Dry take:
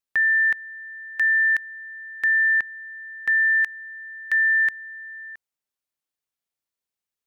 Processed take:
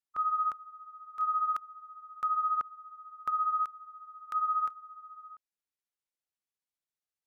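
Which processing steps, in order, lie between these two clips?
delay-line pitch shifter -6 st; gain -8 dB

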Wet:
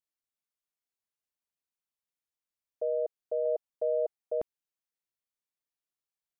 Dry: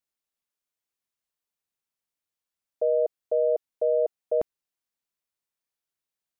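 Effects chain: 3.45–4.18 dynamic EQ 780 Hz, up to +4 dB, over -38 dBFS, Q 2.1; gain -7 dB

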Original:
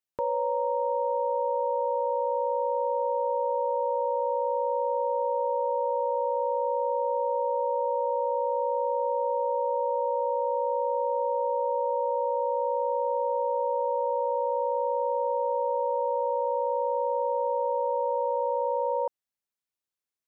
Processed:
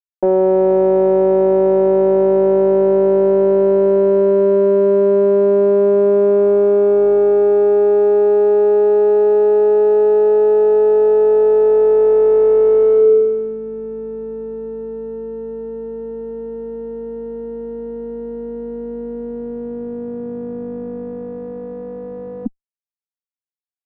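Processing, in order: vocoder on a gliding note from A3, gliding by +5 st; bell 280 Hz +4 dB 3 oct; limiter -24 dBFS, peak gain reduction 8 dB; AGC gain up to 11 dB; fuzz box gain 44 dB, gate -47 dBFS; notch 930 Hz, Q 20; varispeed -15%; low-pass sweep 560 Hz -> 220 Hz, 12.95–13.59; gain -2.5 dB

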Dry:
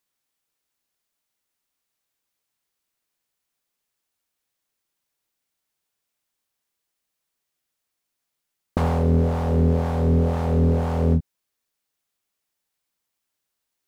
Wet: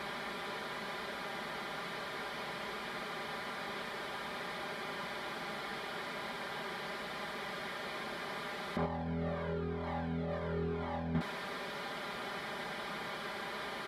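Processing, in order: delta modulation 64 kbps, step -21 dBFS; HPF 65 Hz; low shelf 140 Hz -9 dB; notch 2700 Hz, Q 5.1; comb 5 ms, depth 68%; limiter -17.5 dBFS, peak gain reduction 8.5 dB; air absorption 430 m; 8.86–11.15 cascading flanger falling 1 Hz; gain -4.5 dB

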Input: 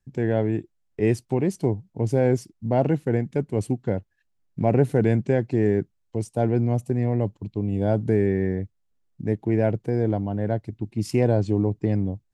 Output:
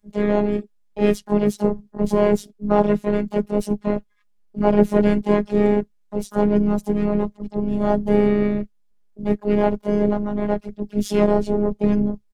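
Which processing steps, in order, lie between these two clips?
harmoniser -7 st -3 dB, +4 st -3 dB, +12 st -13 dB; robotiser 207 Hz; gain +3 dB

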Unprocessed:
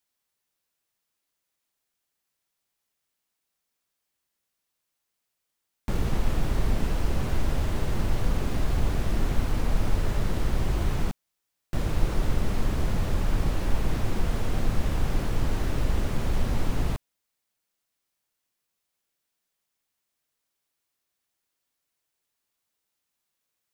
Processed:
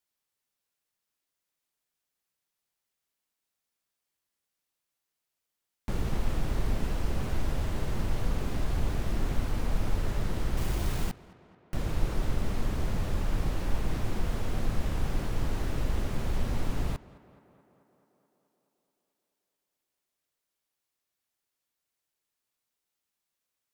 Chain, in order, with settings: vibrato 5.4 Hz 24 cents; 10.57–11.74 requantised 6-bit, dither none; tape echo 0.216 s, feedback 75%, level -18 dB, low-pass 2900 Hz; gain -4 dB

